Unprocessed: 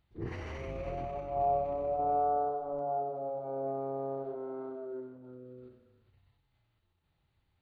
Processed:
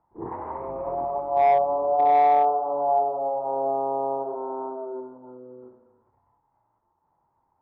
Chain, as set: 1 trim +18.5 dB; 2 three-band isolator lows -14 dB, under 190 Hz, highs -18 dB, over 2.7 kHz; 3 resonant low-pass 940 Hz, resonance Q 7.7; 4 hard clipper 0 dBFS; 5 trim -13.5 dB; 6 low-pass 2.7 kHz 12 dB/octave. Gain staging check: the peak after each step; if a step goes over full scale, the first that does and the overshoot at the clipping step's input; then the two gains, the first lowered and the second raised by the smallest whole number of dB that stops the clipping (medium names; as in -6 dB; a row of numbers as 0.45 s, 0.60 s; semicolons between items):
-2.5 dBFS, -3.0 dBFS, +4.5 dBFS, 0.0 dBFS, -13.5 dBFS, -13.0 dBFS; step 3, 4.5 dB; step 1 +13.5 dB, step 5 -8.5 dB